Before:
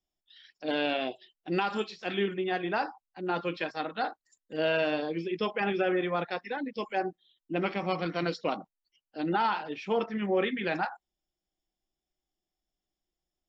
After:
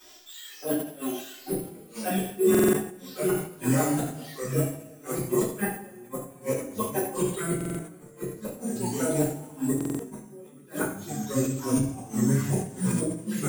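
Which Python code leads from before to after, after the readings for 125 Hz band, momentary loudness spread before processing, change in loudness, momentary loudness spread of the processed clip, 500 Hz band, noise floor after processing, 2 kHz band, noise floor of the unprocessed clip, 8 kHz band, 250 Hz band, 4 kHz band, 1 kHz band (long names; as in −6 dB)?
+12.0 dB, 8 LU, +3.0 dB, 14 LU, +2.5 dB, −49 dBFS, −4.5 dB, below −85 dBFS, can't be measured, +7.0 dB, −4.5 dB, −4.5 dB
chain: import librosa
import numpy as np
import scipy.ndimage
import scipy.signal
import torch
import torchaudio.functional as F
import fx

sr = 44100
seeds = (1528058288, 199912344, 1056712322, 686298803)

y = x + 0.5 * 10.0 ** (-29.0 / 20.0) * np.diff(np.sign(x), prepend=np.sign(x[:1]))
y = (np.kron(scipy.signal.resample_poly(y, 1, 4), np.eye(4)[0]) * 4)[:len(y)]
y = fx.high_shelf(y, sr, hz=5200.0, db=-3.5)
y = fx.dereverb_blind(y, sr, rt60_s=1.4)
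y = fx.env_flanger(y, sr, rest_ms=3.4, full_db=-20.0)
y = fx.tilt_shelf(y, sr, db=8.5, hz=1100.0)
y = fx.echo_pitch(y, sr, ms=741, semitones=-3, count=3, db_per_echo=-3.0)
y = y + 10.0 ** (-10.0 / 20.0) * np.pad(y, (int(75 * sr / 1000.0), 0))[:len(y)]
y = fx.gate_flip(y, sr, shuts_db=-18.0, range_db=-32)
y = fx.rev_double_slope(y, sr, seeds[0], early_s=0.43, late_s=1.6, knee_db=-16, drr_db=-9.5)
y = fx.buffer_glitch(y, sr, at_s=(2.5, 7.56, 9.76), block=2048, repeats=4)
y = fx.sustainer(y, sr, db_per_s=110.0)
y = y * 10.0 ** (-3.0 / 20.0)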